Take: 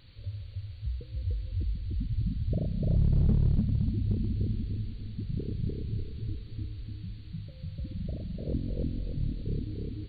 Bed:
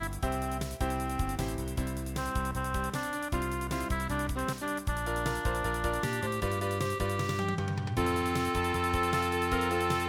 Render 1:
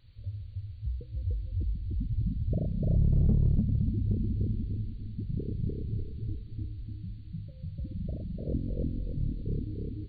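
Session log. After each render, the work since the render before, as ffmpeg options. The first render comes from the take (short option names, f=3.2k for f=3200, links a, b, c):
-af "afftdn=nr=10:nf=-45"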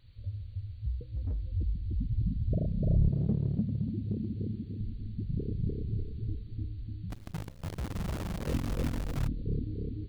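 -filter_complex "[0:a]asettb=1/sr,asplit=3[a][b][c];[a]atrim=end=0.984[d];[b]atrim=start=0.98:end=1.42,asetpts=PTS-STARTPTS,afade=t=in:d=0.004:c=qsin,afade=t=out:st=0.436:d=0.004:c=qsin,asoftclip=type=hard:threshold=-29dB[e];[c]atrim=start=1.416[f];[d][e]acrossfade=d=0.004:c1=hsin:c2=qsin[g];[g][f]acrossfade=d=0.004:c1=qsin:c2=hsin,asettb=1/sr,asplit=3[h][i][j];[h]atrim=end=3.094[k];[i]atrim=start=3.09:end=4.81,asetpts=PTS-STARTPTS,afade=t=in:d=0.004:c=qsin,afade=t=out:st=1.716:d=0.004:c=qsin,highpass=130[l];[j]atrim=start=4.806[m];[k][l]acrossfade=d=0.004:c1=hsin:c2=qsin[n];[n][m]acrossfade=d=0.004:c1=qsin:c2=hsin,asplit=3[o][p][q];[o]afade=t=out:st=7.1:d=0.02[r];[p]acrusher=bits=7:dc=4:mix=0:aa=0.000001,afade=t=in:st=7.1:d=0.02,afade=t=out:st=9.26:d=0.02[s];[q]afade=t=in:st=9.26:d=0.02[t];[r][s][t]amix=inputs=3:normalize=0"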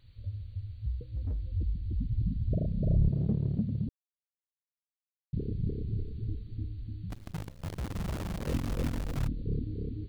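-filter_complex "[0:a]asplit=3[a][b][c];[a]atrim=end=3.89,asetpts=PTS-STARTPTS,afade=t=out:st=3.886:d=0.004:c=hsin[d];[b]atrim=start=3.89:end=5.33,asetpts=PTS-STARTPTS,volume=0[e];[c]atrim=start=5.33,asetpts=PTS-STARTPTS,afade=t=in:d=0.004:c=hsin[f];[d][e][f]concat=n=3:v=0:a=1"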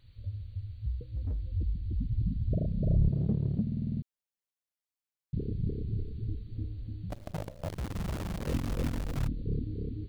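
-filter_complex "[0:a]asettb=1/sr,asplit=3[a][b][c];[a]atrim=end=6.554[d];[b]atrim=start=6.55:end=7.69,asetpts=PTS-STARTPTS,afade=t=in:d=0.004:c=qsin,afade=t=out:st=1.136:d=0.004:c=qsin,equalizer=f=600:t=o:w=0.67:g=14[e];[c]atrim=start=7.686[f];[d][e]acrossfade=d=0.004:c1=hsin:c2=qsin[g];[g][f]acrossfade=d=0.004:c1=qsin:c2=hsin,asplit=9[h][i][j][k][l][m][n][o][p];[h]atrim=end=3.672[q];[i]atrim=start=3.618:end=3.672[r];[j]atrim=start=3.618:end=3.672[s];[k]atrim=start=3.618:end=3.672[t];[l]atrim=start=3.618:end=3.672[u];[m]atrim=start=3.618:end=3.672[v];[n]atrim=start=3.618:end=3.672[w];[o]atrim=start=3.618:end=3.672[x];[p]atrim=start=4.018[y];[q][r]acrossfade=d=0.004:c1=hsin:c2=hsin[z];[z][s]acrossfade=d=0.004:c1=hsin:c2=hsin[aa];[aa][t]acrossfade=d=0.004:c1=hsin:c2=hsin[ab];[ab][u]acrossfade=d=0.004:c1=hsin:c2=hsin[ac];[ac][v]acrossfade=d=0.004:c1=hsin:c2=hsin[ad];[ad][w]acrossfade=d=0.004:c1=hsin:c2=hsin[ae];[ae][x]acrossfade=d=0.004:c1=hsin:c2=hsin[af];[af][y]acrossfade=d=0.004:c1=hsin:c2=hsin"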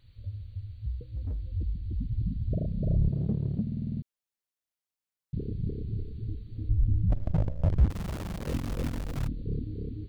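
-filter_complex "[0:a]asettb=1/sr,asplit=3[a][b][c];[a]atrim=end=6.694[d];[b]atrim=start=6.69:end=7.9,asetpts=PTS-STARTPTS,afade=t=in:d=0.004:c=qsin,afade=t=out:st=1.206:d=0.004:c=qsin,aemphasis=mode=reproduction:type=riaa[e];[c]atrim=start=7.896[f];[d][e]acrossfade=d=0.004:c1=hsin:c2=qsin[g];[g][f]acrossfade=d=0.004:c1=qsin:c2=hsin"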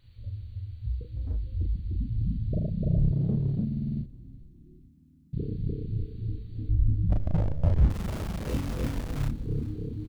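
-filter_complex "[0:a]asplit=2[a][b];[b]adelay=36,volume=-3dB[c];[a][c]amix=inputs=2:normalize=0,asplit=5[d][e][f][g][h];[e]adelay=419,afreqshift=-98,volume=-18.5dB[i];[f]adelay=838,afreqshift=-196,volume=-24.5dB[j];[g]adelay=1257,afreqshift=-294,volume=-30.5dB[k];[h]adelay=1676,afreqshift=-392,volume=-36.6dB[l];[d][i][j][k][l]amix=inputs=5:normalize=0"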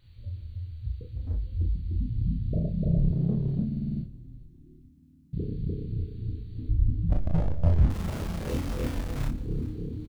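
-filter_complex "[0:a]asplit=2[a][b];[b]adelay=24,volume=-7dB[c];[a][c]amix=inputs=2:normalize=0,aecho=1:1:144:0.0841"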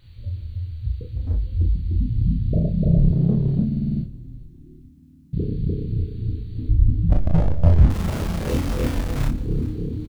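-af "volume=7.5dB"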